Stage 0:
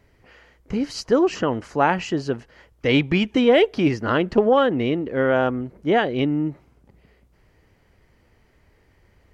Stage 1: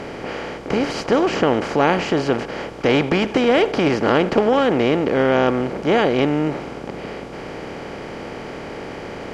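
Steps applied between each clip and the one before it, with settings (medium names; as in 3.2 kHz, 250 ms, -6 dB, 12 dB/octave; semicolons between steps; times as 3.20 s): spectral levelling over time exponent 0.4; trim -3.5 dB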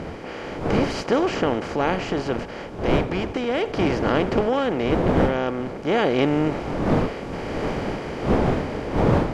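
wind noise 460 Hz -21 dBFS; level rider gain up to 12 dB; trim -6.5 dB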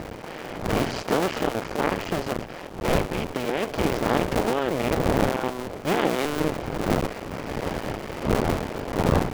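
cycle switcher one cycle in 2, muted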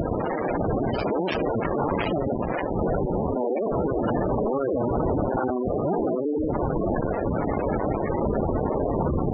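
pre-echo 61 ms -20 dB; fuzz box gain 43 dB, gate -45 dBFS; spectral gate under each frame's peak -10 dB strong; trim -6 dB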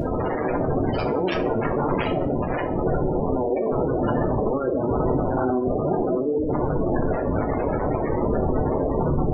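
simulated room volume 48 m³, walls mixed, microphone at 0.38 m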